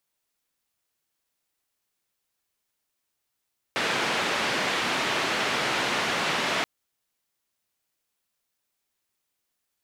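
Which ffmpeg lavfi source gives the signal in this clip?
ffmpeg -f lavfi -i "anoisesrc=color=white:duration=2.88:sample_rate=44100:seed=1,highpass=frequency=170,lowpass=frequency=2700,volume=-12.7dB" out.wav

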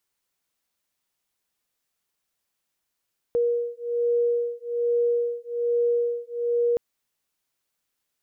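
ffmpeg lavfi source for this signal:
ffmpeg -f lavfi -i "aevalsrc='0.0596*(sin(2*PI*475*t)+sin(2*PI*476.2*t))':duration=3.42:sample_rate=44100" out.wav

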